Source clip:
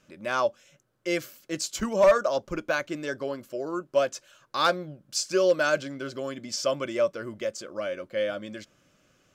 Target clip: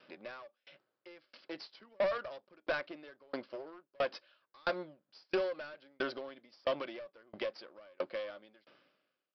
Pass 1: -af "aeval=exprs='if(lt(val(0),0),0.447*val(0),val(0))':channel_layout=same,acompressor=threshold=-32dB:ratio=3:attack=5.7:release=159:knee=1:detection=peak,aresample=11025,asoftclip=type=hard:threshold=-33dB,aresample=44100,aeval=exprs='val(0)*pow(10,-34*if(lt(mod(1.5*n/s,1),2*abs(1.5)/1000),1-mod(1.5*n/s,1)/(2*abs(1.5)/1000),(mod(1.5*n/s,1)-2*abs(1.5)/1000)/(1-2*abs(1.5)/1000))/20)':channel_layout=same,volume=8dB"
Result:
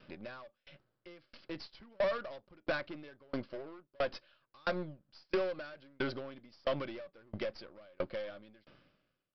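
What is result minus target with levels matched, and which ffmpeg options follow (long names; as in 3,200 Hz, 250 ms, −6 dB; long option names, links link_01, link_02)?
250 Hz band +3.5 dB
-af "aeval=exprs='if(lt(val(0),0),0.447*val(0),val(0))':channel_layout=same,acompressor=threshold=-32dB:ratio=3:attack=5.7:release=159:knee=1:detection=peak,highpass=340,aresample=11025,asoftclip=type=hard:threshold=-33dB,aresample=44100,aeval=exprs='val(0)*pow(10,-34*if(lt(mod(1.5*n/s,1),2*abs(1.5)/1000),1-mod(1.5*n/s,1)/(2*abs(1.5)/1000),(mod(1.5*n/s,1)-2*abs(1.5)/1000)/(1-2*abs(1.5)/1000))/20)':channel_layout=same,volume=8dB"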